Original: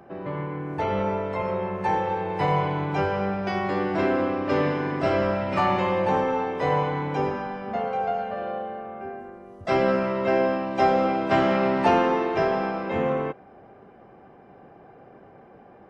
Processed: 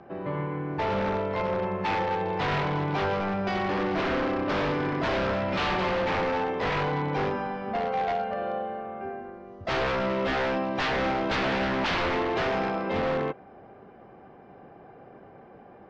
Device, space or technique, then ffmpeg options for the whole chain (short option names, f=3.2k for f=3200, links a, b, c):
synthesiser wavefolder: -af "aeval=exprs='0.0841*(abs(mod(val(0)/0.0841+3,4)-2)-1)':c=same,lowpass=f=5.3k:w=0.5412,lowpass=f=5.3k:w=1.3066"